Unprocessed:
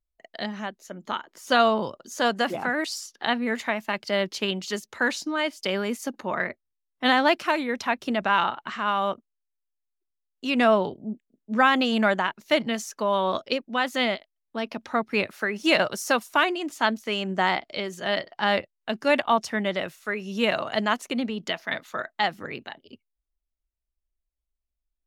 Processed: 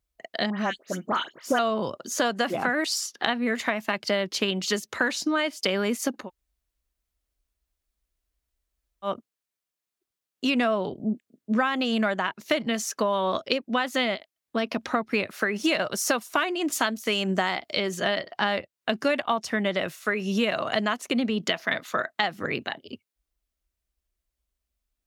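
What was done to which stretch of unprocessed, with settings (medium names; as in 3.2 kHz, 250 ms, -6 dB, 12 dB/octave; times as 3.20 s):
0.50–1.59 s: phase dispersion highs, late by 89 ms, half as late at 2.4 kHz
6.22–9.10 s: room tone, crossfade 0.16 s
16.72–17.79 s: treble shelf 5.7 kHz +10 dB
whole clip: high-pass 40 Hz; band-stop 880 Hz, Q 12; compression 6:1, threshold -29 dBFS; trim +7.5 dB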